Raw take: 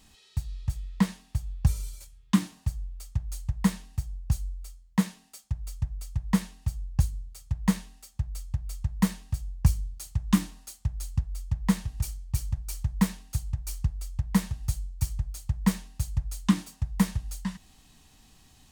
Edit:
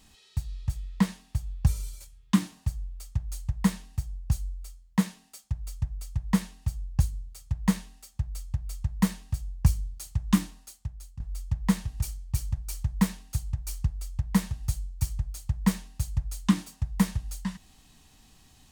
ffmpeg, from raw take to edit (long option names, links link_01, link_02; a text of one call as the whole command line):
ffmpeg -i in.wav -filter_complex "[0:a]asplit=2[link_01][link_02];[link_01]atrim=end=11.2,asetpts=PTS-STARTPTS,afade=type=out:start_time=10.35:duration=0.85:silence=0.158489[link_03];[link_02]atrim=start=11.2,asetpts=PTS-STARTPTS,afade=type=in:duration=0.004:curve=hsin:silence=0.158489[link_04];[link_03][link_04]concat=n=2:v=0:a=1" out.wav